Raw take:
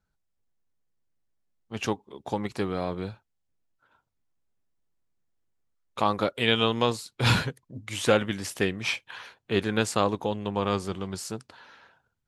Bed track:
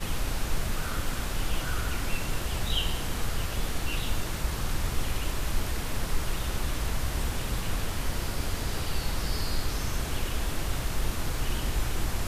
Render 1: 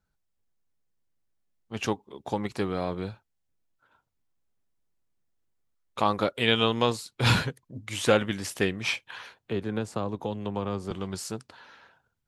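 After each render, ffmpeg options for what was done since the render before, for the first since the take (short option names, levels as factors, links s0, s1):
-filter_complex "[0:a]asettb=1/sr,asplit=3[s0][s1][s2];[s0]atrim=end=9.384[s3];[s1]atrim=start=9.38:end=10.91,asetpts=PTS-STARTPTS,afade=t=in:d=0.004:c=qsin,afade=t=out:st=1.526:d=0.004:c=qsin,acrossover=split=220|1100[s4][s5][s6];[s4]acompressor=threshold=0.0251:ratio=4[s7];[s5]acompressor=threshold=0.0316:ratio=4[s8];[s6]acompressor=threshold=0.00562:ratio=4[s9];[s7][s8][s9]amix=inputs=3:normalize=0[s10];[s2]atrim=start=10.906[s11];[s3][s10]acrossfade=d=0.004:c1=hsin:c2=qsin[s12];[s12][s11]acrossfade=d=0.004:c1=qsin:c2=hsin"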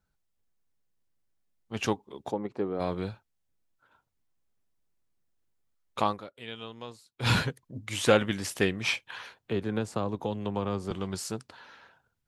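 -filter_complex "[0:a]asplit=3[s0][s1][s2];[s0]afade=t=out:st=2.3:d=0.02[s3];[s1]bandpass=f=410:t=q:w=0.88,afade=t=in:st=2.3:d=0.02,afade=t=out:st=2.79:d=0.02[s4];[s2]afade=t=in:st=2.79:d=0.02[s5];[s3][s4][s5]amix=inputs=3:normalize=0,asplit=3[s6][s7][s8];[s6]atrim=end=6.22,asetpts=PTS-STARTPTS,afade=t=out:st=5.99:d=0.23:silence=0.125893[s9];[s7]atrim=start=6.22:end=7.15,asetpts=PTS-STARTPTS,volume=0.126[s10];[s8]atrim=start=7.15,asetpts=PTS-STARTPTS,afade=t=in:d=0.23:silence=0.125893[s11];[s9][s10][s11]concat=n=3:v=0:a=1"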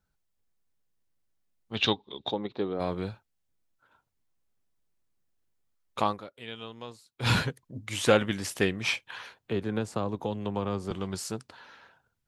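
-filter_complex "[0:a]asettb=1/sr,asplit=3[s0][s1][s2];[s0]atrim=end=1.754[s3];[s1]atrim=start=1.75:end=2.74,asetpts=PTS-STARTPTS,afade=t=in:d=0.004:c=qsin,afade=t=out:st=0.986:d=0.004:c=qsin,lowpass=f=3700:t=q:w=11[s4];[s2]atrim=start=2.736[s5];[s3][s4]acrossfade=d=0.004:c1=hsin:c2=qsin[s6];[s6][s5]acrossfade=d=0.004:c1=qsin:c2=hsin"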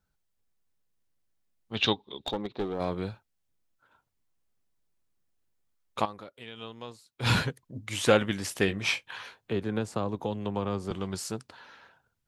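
-filter_complex "[0:a]asettb=1/sr,asplit=3[s0][s1][s2];[s0]atrim=end=2.194[s3];[s1]atrim=start=2.19:end=2.96,asetpts=PTS-STARTPTS,afade=t=in:d=0.004:c=qsin,afade=t=out:st=0.766:d=0.004:c=qsin,aeval=exprs='clip(val(0),-1,0.0335)':c=same[s4];[s2]atrim=start=2.956[s5];[s3][s4]acrossfade=d=0.004:c1=hsin:c2=qsin[s6];[s6][s5]acrossfade=d=0.004:c1=qsin:c2=hsin,asettb=1/sr,asplit=3[s7][s8][s9];[s7]atrim=end=6.054[s10];[s8]atrim=start=6.05:end=6.6,asetpts=PTS-STARTPTS,afade=t=in:d=0.004:c=qsin,afade=t=out:st=0.546:d=0.004:c=qsin,acompressor=threshold=0.0126:ratio=3:attack=3.2:release=140:knee=1:detection=peak[s11];[s9]atrim=start=6.596[s12];[s10][s11]acrossfade=d=0.004:c1=hsin:c2=qsin[s13];[s13][s12]acrossfade=d=0.004:c1=qsin:c2=hsin,asettb=1/sr,asplit=3[s14][s15][s16];[s14]atrim=end=8.664[s17];[s15]atrim=start=8.66:end=9.52,asetpts=PTS-STARTPTS,afade=t=in:d=0.004:c=qsin,afade=t=out:st=0.856:d=0.004:c=qsin,asplit=2[s18][s19];[s19]adelay=20,volume=0.422[s20];[s18][s20]amix=inputs=2:normalize=0,atrim=end_sample=37926[s21];[s16]atrim=start=9.516[s22];[s17][s21]acrossfade=d=0.004:c1=hsin:c2=qsin[s23];[s23][s22]acrossfade=d=0.004:c1=qsin:c2=hsin"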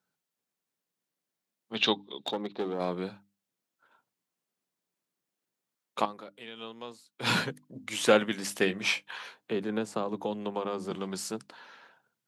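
-af "highpass=f=160:w=0.5412,highpass=f=160:w=1.3066,bandreject=f=50:t=h:w=6,bandreject=f=100:t=h:w=6,bandreject=f=150:t=h:w=6,bandreject=f=200:t=h:w=6,bandreject=f=250:t=h:w=6,bandreject=f=300:t=h:w=6"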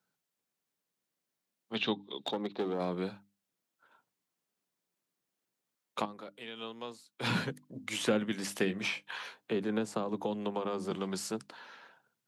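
-filter_complex "[0:a]acrossover=split=3600[s0][s1];[s1]alimiter=level_in=2:limit=0.0631:level=0:latency=1:release=130,volume=0.501[s2];[s0][s2]amix=inputs=2:normalize=0,acrossover=split=310[s3][s4];[s4]acompressor=threshold=0.0251:ratio=4[s5];[s3][s5]amix=inputs=2:normalize=0"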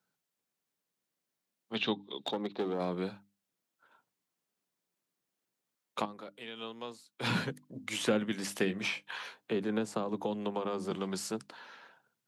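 -af anull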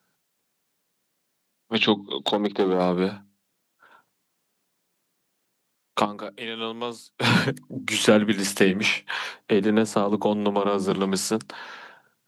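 -af "volume=3.98"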